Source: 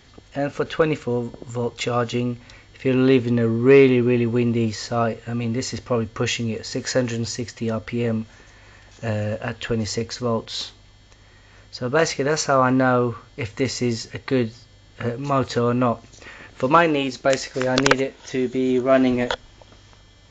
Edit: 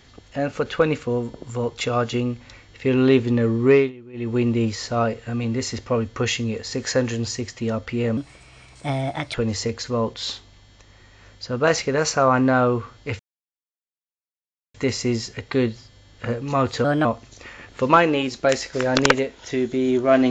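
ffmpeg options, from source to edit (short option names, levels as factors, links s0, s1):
-filter_complex "[0:a]asplit=8[s0][s1][s2][s3][s4][s5][s6][s7];[s0]atrim=end=3.92,asetpts=PTS-STARTPTS,afade=t=out:st=3.57:d=0.35:c=qsin:silence=0.0668344[s8];[s1]atrim=start=3.92:end=4.13,asetpts=PTS-STARTPTS,volume=0.0668[s9];[s2]atrim=start=4.13:end=8.174,asetpts=PTS-STARTPTS,afade=t=in:d=0.35:c=qsin:silence=0.0668344[s10];[s3]atrim=start=8.17:end=9.66,asetpts=PTS-STARTPTS,asetrate=56007,aresample=44100,atrim=end_sample=51739,asetpts=PTS-STARTPTS[s11];[s4]atrim=start=9.656:end=13.51,asetpts=PTS-STARTPTS,afade=t=out:st=3.85:d=0.004:c=hsin,apad=pad_dur=1.55[s12];[s5]atrim=start=13.51:end=15.614,asetpts=PTS-STARTPTS,afade=t=in:d=0.004:c=hsin[s13];[s6]atrim=start=15.61:end=15.86,asetpts=PTS-STARTPTS,asetrate=53361,aresample=44100[s14];[s7]atrim=start=15.856[s15];[s8][s9][s10]concat=n=3:v=0:a=1[s16];[s16][s11]acrossfade=d=0.004:c1=hsin:c2=hsin[s17];[s12][s13]concat=n=2:v=0:a=1[s18];[s17][s18]acrossfade=d=0.004:c1=hsin:c2=hsin[s19];[s19][s14]acrossfade=d=0.004:c1=hsin:c2=hsin[s20];[s20][s15]acrossfade=d=0.004:c1=hsin:c2=hsin"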